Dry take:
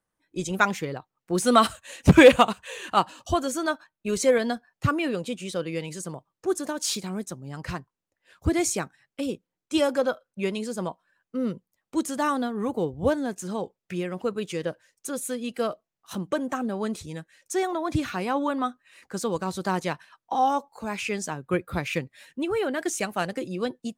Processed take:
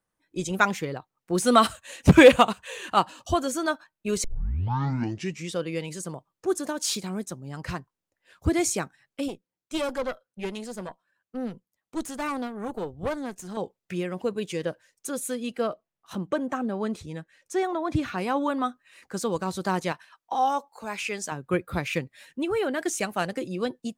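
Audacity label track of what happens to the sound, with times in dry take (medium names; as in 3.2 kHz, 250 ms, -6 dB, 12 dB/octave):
4.240000	4.240000	tape start 1.35 s
9.280000	13.570000	valve stage drive 23 dB, bias 0.8
14.170000	14.600000	band-stop 1.3 kHz, Q 5.6
15.540000	18.180000	treble shelf 4.7 kHz -9.5 dB
19.920000	21.320000	bass shelf 270 Hz -11 dB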